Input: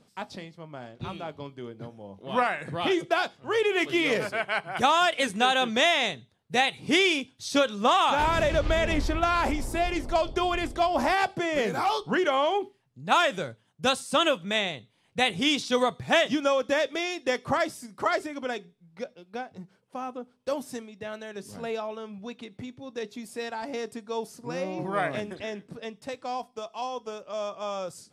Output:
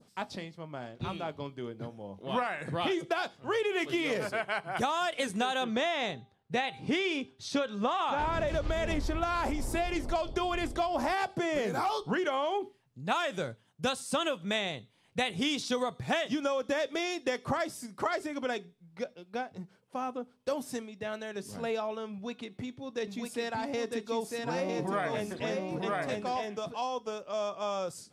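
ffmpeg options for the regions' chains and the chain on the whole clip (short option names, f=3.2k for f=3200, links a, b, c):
-filter_complex "[0:a]asettb=1/sr,asplit=3[a][b][c];[a]atrim=end=5.644[d];[b]atrim=start=5.64:end=8.48,asetpts=PTS-STARTPTS,afade=t=in:d=0.004:c=qsin,afade=t=out:st=2.836:d=0.004:c=qsin,aemphasis=mode=reproduction:type=50fm,bandreject=f=395.9:t=h:w=4,bandreject=f=791.8:t=h:w=4,bandreject=f=1.1877k:t=h:w=4,bandreject=f=1.5836k:t=h:w=4[e];[c]atrim=start=8.476[f];[d][e]acrossfade=d=0.004:c1=hsin:c2=qsin[g];[g][f]acrossfade=d=0.004:c1=qsin:c2=hsin,asettb=1/sr,asplit=3[h][i][j];[h]atrim=end=22.124[k];[i]atrim=start=22.12:end=26.77,asetpts=PTS-STARTPTS,afade=t=in:d=0.004:c=qsin,afade=t=out:st=4.646:d=0.004:c=qsin,bandreject=f=365.4:t=h:w=4,bandreject=f=730.8:t=h:w=4,bandreject=f=1.0962k:t=h:w=4,bandreject=f=1.4616k:t=h:w=4,bandreject=f=1.827k:t=h:w=4,bandreject=f=2.1924k:t=h:w=4,bandreject=f=2.5578k:t=h:w=4,bandreject=f=2.9232k:t=h:w=4,bandreject=f=3.2886k:t=h:w=4,bandreject=f=3.654k:t=h:w=4,bandreject=f=4.0194k:t=h:w=4,aecho=1:1:953:0.708,atrim=end_sample=205065[l];[j]atrim=start=26.766[m];[k][l]acrossfade=d=0.004:c1=hsin:c2=qsin[n];[n][m]acrossfade=d=0.004:c1=qsin:c2=hsin,adynamicequalizer=threshold=0.0112:dfrequency=2500:dqfactor=0.97:tfrequency=2500:tqfactor=0.97:attack=5:release=100:ratio=0.375:range=2:mode=cutabove:tftype=bell,acompressor=threshold=-27dB:ratio=6"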